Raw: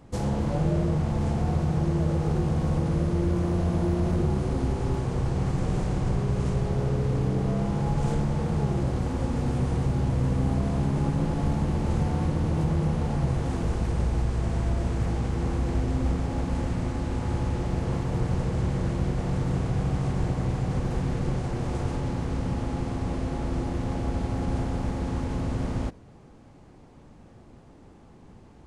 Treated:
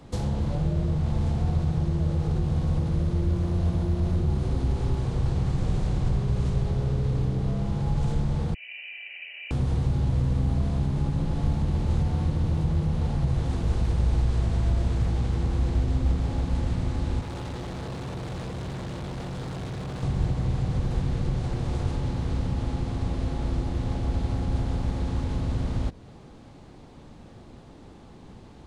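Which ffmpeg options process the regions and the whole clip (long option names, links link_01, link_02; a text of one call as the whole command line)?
ffmpeg -i in.wav -filter_complex "[0:a]asettb=1/sr,asplit=3[link_01][link_02][link_03];[link_01]atrim=end=8.544[link_04];[link_02]atrim=start=8.54:end=9.51,asetpts=PTS-STARTPTS,afade=type=in:duration=0.004:curve=qsin,afade=type=out:start_time=0.966:duration=0.004:curve=qsin,asplit=3[link_05][link_06][link_07];[link_05]bandpass=frequency=730:width_type=q:width=8,volume=0dB[link_08];[link_06]bandpass=frequency=1090:width_type=q:width=8,volume=-6dB[link_09];[link_07]bandpass=frequency=2440:width_type=q:width=8,volume=-9dB[link_10];[link_08][link_09][link_10]amix=inputs=3:normalize=0,lowpass=frequency=2600:width_type=q:width=0.5098,lowpass=frequency=2600:width_type=q:width=0.6013,lowpass=frequency=2600:width_type=q:width=0.9,lowpass=frequency=2600:width_type=q:width=2.563,afreqshift=-3100[link_11];[link_03]atrim=start=9.506[link_12];[link_04][link_11]acrossfade=duration=0.004:curve1=hsin:curve2=qsin[link_13];[link_13][link_12]acrossfade=duration=0.004:curve1=qsin:curve2=hsin,asettb=1/sr,asplit=3[link_14][link_15][link_16];[link_14]atrim=end=17.214[link_17];[link_15]atrim=start=17.21:end=20.03,asetpts=PTS-STARTPTS,afade=type=in:duration=0.004:curve=qsin,afade=type=out:start_time=2.816:duration=0.004:curve=qsin,highpass=frequency=120:poles=1,asoftclip=type=hard:threshold=-33.5dB[link_18];[link_16]atrim=start=20.026[link_19];[link_17][link_18]acrossfade=duration=0.004:curve1=hsin:curve2=qsin[link_20];[link_20][link_19]acrossfade=duration=0.004:curve1=qsin:curve2=hsin,equalizer=frequency=3800:width_type=o:width=0.69:gain=7,acrossover=split=130[link_21][link_22];[link_22]acompressor=threshold=-38dB:ratio=3[link_23];[link_21][link_23]amix=inputs=2:normalize=0,volume=3.5dB" out.wav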